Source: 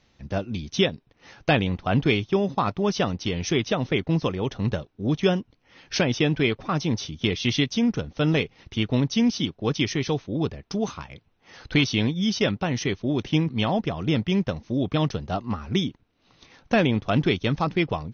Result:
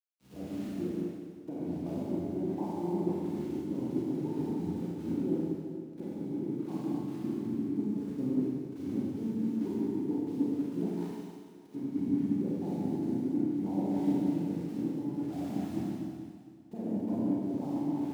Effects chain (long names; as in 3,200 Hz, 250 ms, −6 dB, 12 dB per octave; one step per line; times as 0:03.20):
pitch shifter swept by a sawtooth −3.5 semitones, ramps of 180 ms
formant resonators in series u
low-shelf EQ 250 Hz +2.5 dB
centre clipping without the shift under −51 dBFS
downward compressor, threshold −37 dBFS, peak gain reduction 16 dB
high-pass filter 160 Hz 12 dB per octave
four-comb reverb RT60 3.4 s, combs from 31 ms, DRR −8.5 dB
multiband upward and downward expander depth 70%
level +1 dB